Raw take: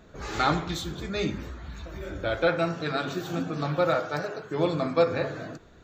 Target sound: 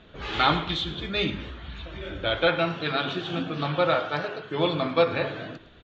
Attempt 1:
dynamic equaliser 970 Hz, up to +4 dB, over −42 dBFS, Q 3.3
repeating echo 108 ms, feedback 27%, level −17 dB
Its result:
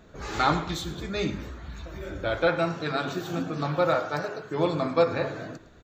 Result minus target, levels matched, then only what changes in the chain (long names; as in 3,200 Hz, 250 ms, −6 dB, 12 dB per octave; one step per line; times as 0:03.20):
4,000 Hz band −6.5 dB
add after dynamic equaliser: low-pass with resonance 3,200 Hz, resonance Q 4.4